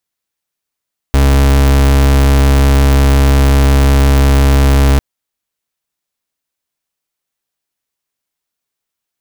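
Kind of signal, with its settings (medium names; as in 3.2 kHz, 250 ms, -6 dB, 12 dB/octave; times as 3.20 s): pulse 68.8 Hz, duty 38% -8 dBFS 3.85 s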